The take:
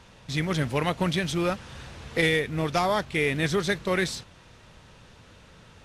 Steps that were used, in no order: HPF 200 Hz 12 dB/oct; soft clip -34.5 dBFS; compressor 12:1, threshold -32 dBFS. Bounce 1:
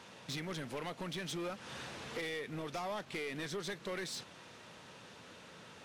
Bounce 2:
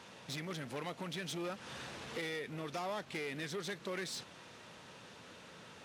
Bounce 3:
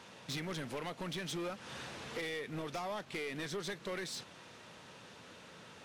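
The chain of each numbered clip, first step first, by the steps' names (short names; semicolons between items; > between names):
compressor > HPF > soft clip; compressor > soft clip > HPF; HPF > compressor > soft clip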